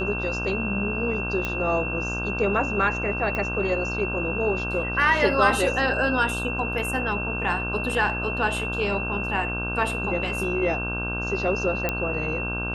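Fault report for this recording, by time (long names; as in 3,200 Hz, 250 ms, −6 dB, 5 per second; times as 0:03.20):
mains buzz 60 Hz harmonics 27 −31 dBFS
whistle 2,700 Hz −29 dBFS
0:01.45: click −13 dBFS
0:03.35: click −16 dBFS
0:11.89: click −10 dBFS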